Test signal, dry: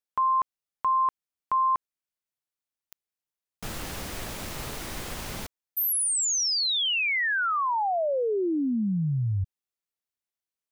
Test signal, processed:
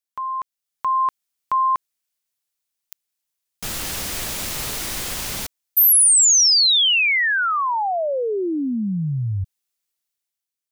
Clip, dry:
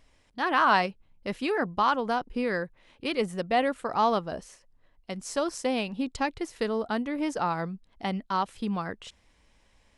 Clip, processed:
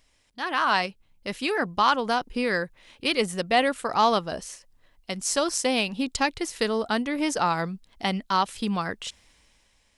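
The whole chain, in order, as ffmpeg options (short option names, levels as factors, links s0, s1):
-af "highshelf=f=2300:g=10.5,dynaudnorm=f=130:g=11:m=2.66,volume=0.531"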